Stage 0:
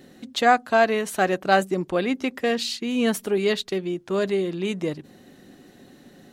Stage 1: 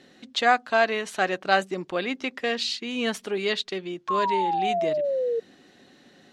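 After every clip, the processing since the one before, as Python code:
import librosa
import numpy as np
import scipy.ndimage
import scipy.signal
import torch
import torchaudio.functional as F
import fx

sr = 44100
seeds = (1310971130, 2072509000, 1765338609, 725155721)

y = scipy.signal.sosfilt(scipy.signal.butter(2, 4500.0, 'lowpass', fs=sr, output='sos'), x)
y = fx.tilt_eq(y, sr, slope=2.5)
y = fx.spec_paint(y, sr, seeds[0], shape='fall', start_s=4.08, length_s=1.32, low_hz=450.0, high_hz=1100.0, level_db=-23.0)
y = F.gain(torch.from_numpy(y), -2.0).numpy()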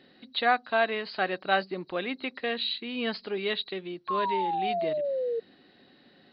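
y = fx.freq_compress(x, sr, knee_hz=3800.0, ratio=4.0)
y = F.gain(torch.from_numpy(y), -4.0).numpy()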